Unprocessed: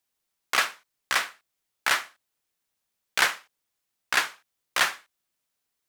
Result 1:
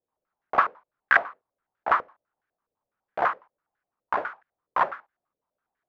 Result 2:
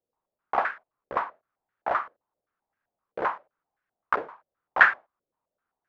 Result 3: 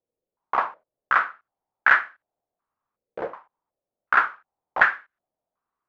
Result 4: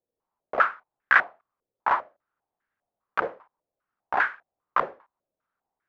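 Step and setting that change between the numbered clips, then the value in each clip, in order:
stepped low-pass, rate: 12, 7.7, 2.7, 5 Hz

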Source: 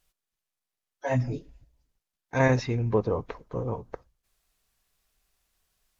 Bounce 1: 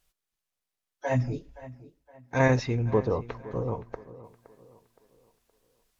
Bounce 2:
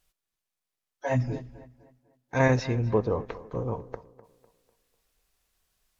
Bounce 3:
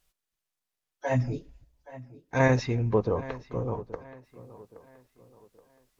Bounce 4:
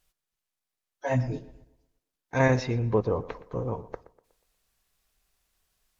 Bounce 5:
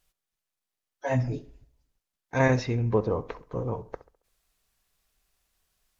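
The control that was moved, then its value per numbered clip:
tape echo, time: 518, 250, 824, 120, 66 ms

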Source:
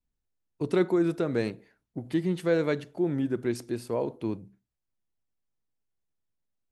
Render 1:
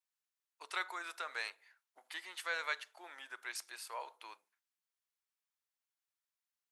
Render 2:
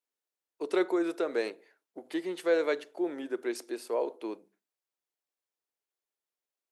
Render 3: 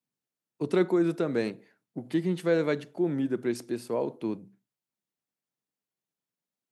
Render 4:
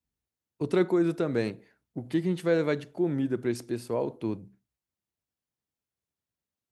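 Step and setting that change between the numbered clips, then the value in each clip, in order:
HPF, cutoff: 990, 370, 140, 50 Hz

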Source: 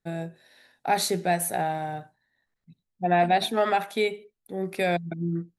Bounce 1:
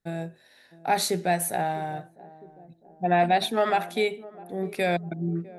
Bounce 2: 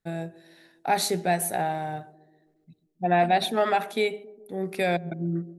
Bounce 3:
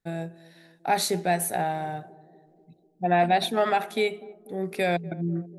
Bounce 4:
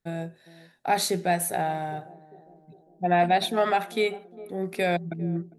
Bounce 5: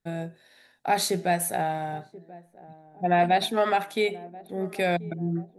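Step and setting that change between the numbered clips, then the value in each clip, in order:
narrowing echo, time: 0.655, 0.136, 0.246, 0.403, 1.034 s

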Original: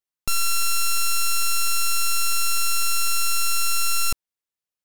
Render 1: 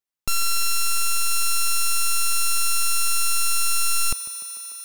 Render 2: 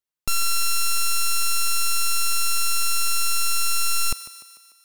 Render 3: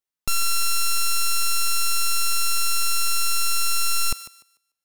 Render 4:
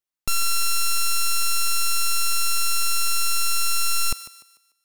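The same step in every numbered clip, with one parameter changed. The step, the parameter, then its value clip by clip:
thinning echo, feedback: 87, 58, 24, 37%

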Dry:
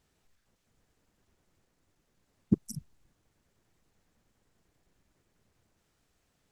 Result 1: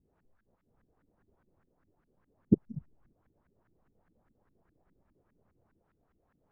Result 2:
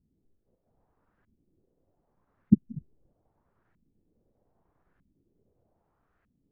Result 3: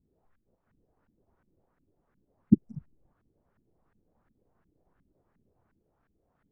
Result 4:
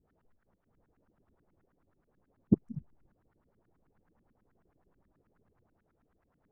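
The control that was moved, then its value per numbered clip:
LFO low-pass, rate: 4.9, 0.8, 2.8, 9.3 Hz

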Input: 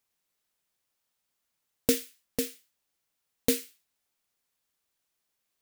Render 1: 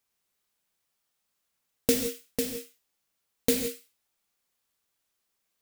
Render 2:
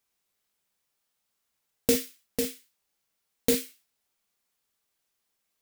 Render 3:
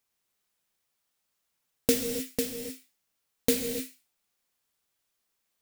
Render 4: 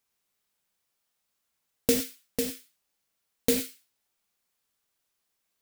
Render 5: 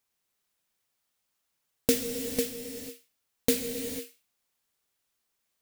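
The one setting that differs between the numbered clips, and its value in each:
non-linear reverb, gate: 200, 80, 330, 130, 520 ms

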